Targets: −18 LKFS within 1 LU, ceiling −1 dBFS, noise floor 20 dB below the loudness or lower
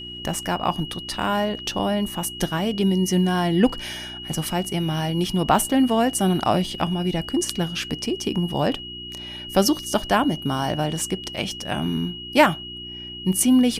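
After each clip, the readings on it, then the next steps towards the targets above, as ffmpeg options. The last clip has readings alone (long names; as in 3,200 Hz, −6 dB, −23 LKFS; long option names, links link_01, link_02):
mains hum 60 Hz; hum harmonics up to 360 Hz; level of the hum −40 dBFS; interfering tone 2,900 Hz; level of the tone −34 dBFS; integrated loudness −23.0 LKFS; sample peak −2.0 dBFS; target loudness −18.0 LKFS
→ -af "bandreject=frequency=60:width_type=h:width=4,bandreject=frequency=120:width_type=h:width=4,bandreject=frequency=180:width_type=h:width=4,bandreject=frequency=240:width_type=h:width=4,bandreject=frequency=300:width_type=h:width=4,bandreject=frequency=360:width_type=h:width=4"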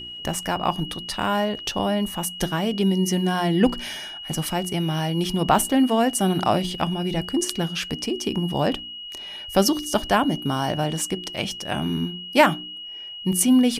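mains hum none found; interfering tone 2,900 Hz; level of the tone −34 dBFS
→ -af "bandreject=frequency=2900:width=30"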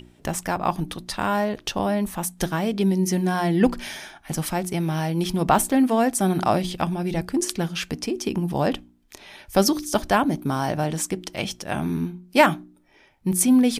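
interfering tone none found; integrated loudness −23.5 LKFS; sample peak −3.0 dBFS; target loudness −18.0 LKFS
→ -af "volume=5.5dB,alimiter=limit=-1dB:level=0:latency=1"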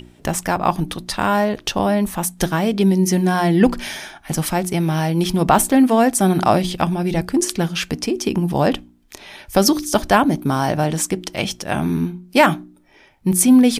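integrated loudness −18.5 LKFS; sample peak −1.0 dBFS; background noise floor −51 dBFS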